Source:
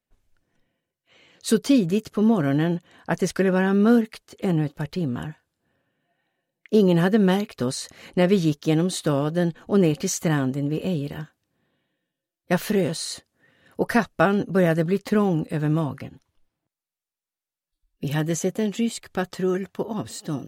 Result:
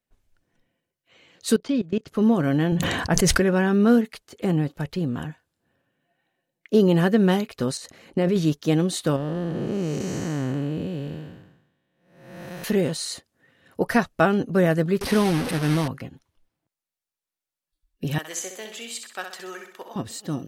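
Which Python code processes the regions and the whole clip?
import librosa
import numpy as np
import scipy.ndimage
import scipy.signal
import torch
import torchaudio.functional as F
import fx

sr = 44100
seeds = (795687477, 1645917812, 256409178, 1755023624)

y = fx.chain(x, sr, fx.lowpass(hz=4000.0, slope=12),
    fx.level_steps(step_db=21), at=(1.56, 2.08))
y = fx.chain(y, sr, fx.low_shelf(hz=110.0, db=11.5),
    fx.sustainer(db_per_s=27.0), at=(2.72, 3.4))
y = fx.chain(y, sr, fx.peak_eq(hz=340.0, db=5.0, octaves=2.9),
    fx.level_steps(step_db=10), at=(7.77, 8.36))
y = fx.chain(y, sr, fx.spec_blur(span_ms=444.0),
    fx.high_shelf(hz=9200.0, db=-7.0), at=(9.16, 12.64))
y = fx.chain(y, sr, fx.delta_mod(bps=64000, step_db=-22.0),
    fx.peak_eq(hz=7200.0, db=-11.5, octaves=0.24), at=(15.01, 15.88))
y = fx.chain(y, sr, fx.bessel_highpass(hz=1100.0, order=2),
    fx.room_flutter(wall_m=11.0, rt60_s=0.55), at=(18.18, 19.96))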